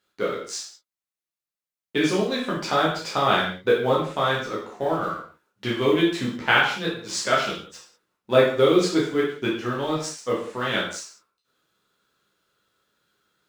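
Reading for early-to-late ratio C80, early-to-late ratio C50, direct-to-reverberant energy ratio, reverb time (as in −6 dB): 8.0 dB, 3.5 dB, −6.0 dB, non-exponential decay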